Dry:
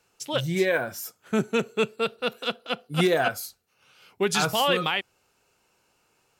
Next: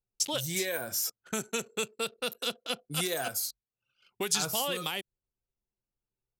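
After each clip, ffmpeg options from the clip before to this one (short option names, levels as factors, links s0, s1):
-filter_complex "[0:a]anlmdn=0.01,acrossover=split=600|6200[s0][s1][s2];[s0]acompressor=threshold=0.0141:ratio=4[s3];[s1]acompressor=threshold=0.0141:ratio=4[s4];[s2]acompressor=threshold=0.00355:ratio=4[s5];[s3][s4][s5]amix=inputs=3:normalize=0,bass=f=250:g=-1,treble=f=4000:g=15"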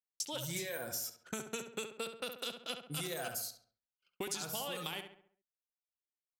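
-filter_complex "[0:a]agate=range=0.0224:threshold=0.00158:ratio=3:detection=peak,acompressor=threshold=0.02:ratio=6,asplit=2[s0][s1];[s1]adelay=68,lowpass=f=2600:p=1,volume=0.473,asplit=2[s2][s3];[s3]adelay=68,lowpass=f=2600:p=1,volume=0.47,asplit=2[s4][s5];[s5]adelay=68,lowpass=f=2600:p=1,volume=0.47,asplit=2[s6][s7];[s7]adelay=68,lowpass=f=2600:p=1,volume=0.47,asplit=2[s8][s9];[s9]adelay=68,lowpass=f=2600:p=1,volume=0.47,asplit=2[s10][s11];[s11]adelay=68,lowpass=f=2600:p=1,volume=0.47[s12];[s2][s4][s6][s8][s10][s12]amix=inputs=6:normalize=0[s13];[s0][s13]amix=inputs=2:normalize=0,volume=0.75"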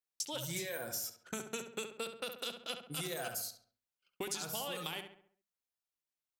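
-af "bandreject=f=50:t=h:w=6,bandreject=f=100:t=h:w=6,bandreject=f=150:t=h:w=6,bandreject=f=200:t=h:w=6,bandreject=f=250:t=h:w=6"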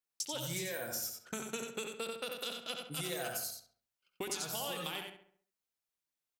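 -af "aecho=1:1:90:0.531"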